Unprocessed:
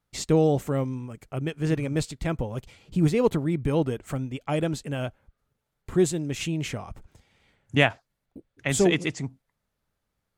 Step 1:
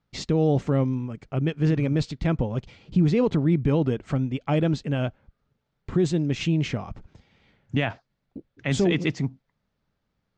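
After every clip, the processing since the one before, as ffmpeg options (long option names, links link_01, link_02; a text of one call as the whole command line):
ffmpeg -i in.wav -af "lowpass=frequency=5600:width=0.5412,lowpass=frequency=5600:width=1.3066,equalizer=frequency=190:width=0.82:gain=5.5,alimiter=limit=-14dB:level=0:latency=1:release=30,volume=1.5dB" out.wav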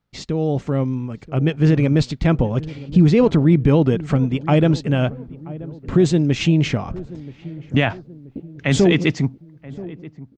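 ffmpeg -i in.wav -filter_complex "[0:a]dynaudnorm=framelen=310:gausssize=7:maxgain=7.5dB,asplit=2[link_01][link_02];[link_02]adelay=980,lowpass=frequency=800:poles=1,volume=-17dB,asplit=2[link_03][link_04];[link_04]adelay=980,lowpass=frequency=800:poles=1,volume=0.52,asplit=2[link_05][link_06];[link_06]adelay=980,lowpass=frequency=800:poles=1,volume=0.52,asplit=2[link_07][link_08];[link_08]adelay=980,lowpass=frequency=800:poles=1,volume=0.52,asplit=2[link_09][link_10];[link_10]adelay=980,lowpass=frequency=800:poles=1,volume=0.52[link_11];[link_01][link_03][link_05][link_07][link_09][link_11]amix=inputs=6:normalize=0" out.wav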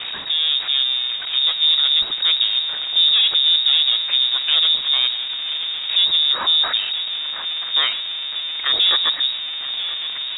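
ffmpeg -i in.wav -af "aeval=exprs='val(0)+0.5*0.119*sgn(val(0))':channel_layout=same,aeval=exprs='(tanh(3.98*val(0)+0.65)-tanh(0.65))/3.98':channel_layout=same,lowpass=frequency=3200:width_type=q:width=0.5098,lowpass=frequency=3200:width_type=q:width=0.6013,lowpass=frequency=3200:width_type=q:width=0.9,lowpass=frequency=3200:width_type=q:width=2.563,afreqshift=-3800" out.wav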